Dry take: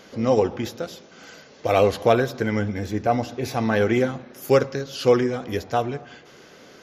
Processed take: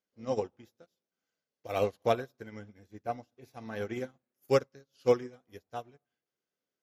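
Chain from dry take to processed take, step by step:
high-shelf EQ 8,100 Hz +9.5 dB
expander for the loud parts 2.5 to 1, over −38 dBFS
level −6 dB

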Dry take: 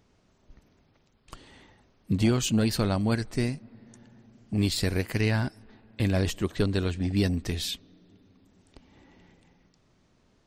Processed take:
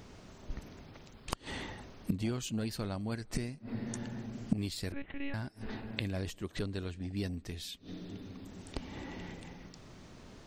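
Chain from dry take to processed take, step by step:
0:04.92–0:05.34: one-pitch LPC vocoder at 8 kHz 280 Hz
gate with flip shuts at −29 dBFS, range −24 dB
level +12.5 dB

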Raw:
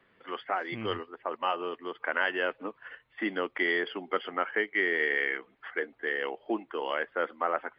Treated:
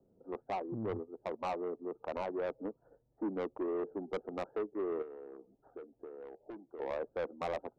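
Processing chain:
adaptive Wiener filter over 41 samples
Butterworth low-pass 1,100 Hz 48 dB per octave
soft clipping −32.5 dBFS, distortion −9 dB
0:05.02–0:06.80: downward compressor 6 to 1, threshold −48 dBFS, peak gain reduction 12.5 dB
level +2 dB

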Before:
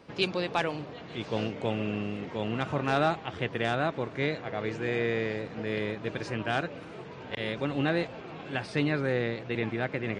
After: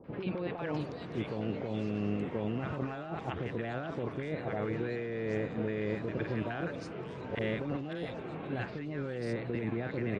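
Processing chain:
high-shelf EQ 2,300 Hz −10 dB
compressor whose output falls as the input rises −34 dBFS, ratio −1
three-band delay without the direct sound lows, mids, highs 40/580 ms, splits 850/3,600 Hz

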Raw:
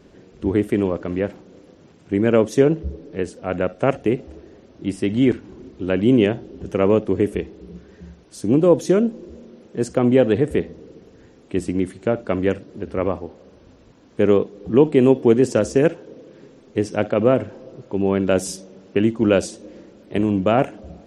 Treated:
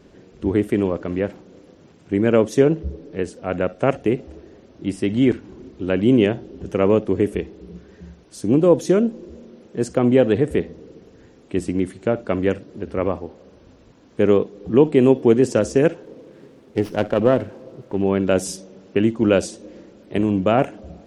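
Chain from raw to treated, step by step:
0:16.03–0:18.04: windowed peak hold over 5 samples

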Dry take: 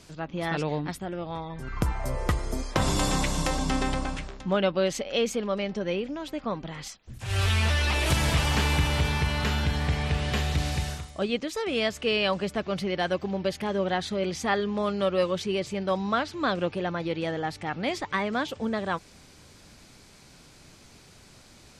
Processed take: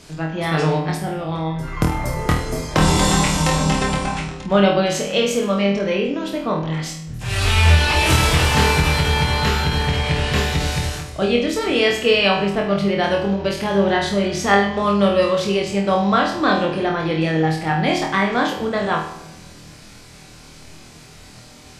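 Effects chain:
0:12.28–0:13.04: high-shelf EQ 5,200 Hz −9 dB
on a send: flutter between parallel walls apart 4.3 metres, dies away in 0.45 s
on the sum: rectangular room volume 510 cubic metres, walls mixed, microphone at 0.47 metres
every ending faded ahead of time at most 120 dB per second
level +6.5 dB

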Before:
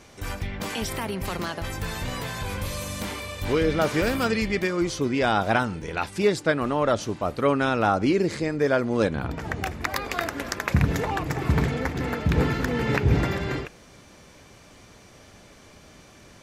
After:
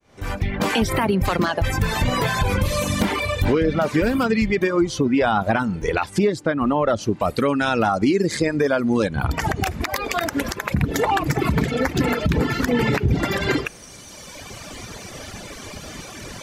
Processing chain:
fade in at the beginning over 1.01 s
high-shelf EQ 3,300 Hz −8.5 dB, from 0:07.20 +3.5 dB
reverb reduction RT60 1.8 s
dynamic equaliser 230 Hz, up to +4 dB, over −36 dBFS, Q 1.3
downward compressor 6 to 1, threshold −33 dBFS, peak gain reduction 18 dB
boost into a limiter +25 dB
level −8 dB

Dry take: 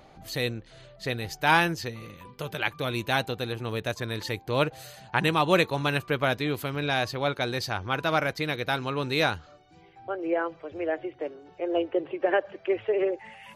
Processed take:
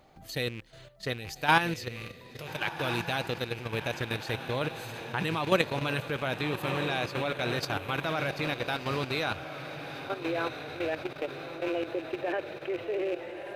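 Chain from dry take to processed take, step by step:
loose part that buzzes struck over −41 dBFS, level −28 dBFS
bit reduction 12 bits
on a send: feedback delay with all-pass diffusion 1,338 ms, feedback 50%, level −8 dB
on the sum: output level in coarse steps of 10 dB

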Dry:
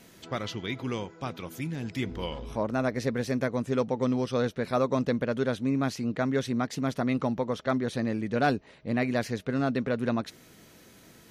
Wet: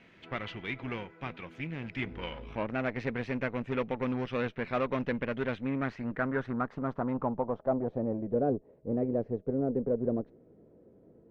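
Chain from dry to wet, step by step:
harmonic generator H 8 −22 dB, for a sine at −14.5 dBFS
low-pass filter sweep 2,400 Hz → 480 Hz, 0:05.51–0:08.46
level −5.5 dB

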